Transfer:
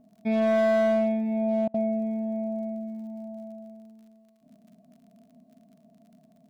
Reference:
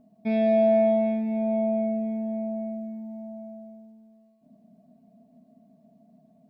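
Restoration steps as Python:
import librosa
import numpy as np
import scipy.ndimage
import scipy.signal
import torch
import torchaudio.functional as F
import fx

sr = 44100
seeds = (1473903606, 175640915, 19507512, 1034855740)

y = fx.fix_declip(x, sr, threshold_db=-19.0)
y = fx.fix_declick_ar(y, sr, threshold=6.5)
y = fx.fix_interpolate(y, sr, at_s=(1.68,), length_ms=60.0)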